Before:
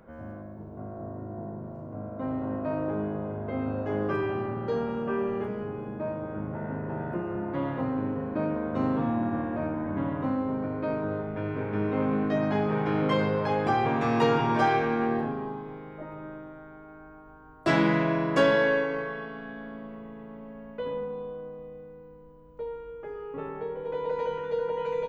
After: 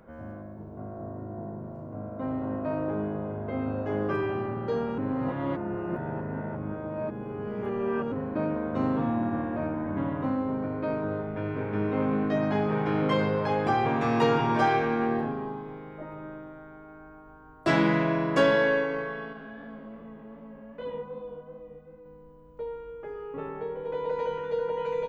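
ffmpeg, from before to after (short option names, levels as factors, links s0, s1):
-filter_complex "[0:a]asettb=1/sr,asplit=3[s0][s1][s2];[s0]atrim=end=19.334[s3];[s1]atrim=start=19.33:end=22.06,asetpts=PTS-STARTPTS,afade=t=in:d=0.004:c=qsin,afade=t=out:st=2.726:d=0.004:c=qsin,flanger=delay=22.5:depth=5:speed=2.6[s4];[s2]atrim=start=22.056[s5];[s3][s4]acrossfade=d=0.004:c1=hsin:c2=qsin[s6];[s6][s5]acrossfade=d=0.004:c1=qsin:c2=hsin,asplit=3[s7][s8][s9];[s7]atrim=end=4.982[s10];[s8]atrim=start=4.978:end=8.122,asetpts=PTS-STARTPTS,areverse[s11];[s9]atrim=start=8.118[s12];[s10][s11]acrossfade=d=0.004:c1=hsin:c2=hsin[s13];[s13][s12]acrossfade=d=0.004:c1=hsin:c2=hsin"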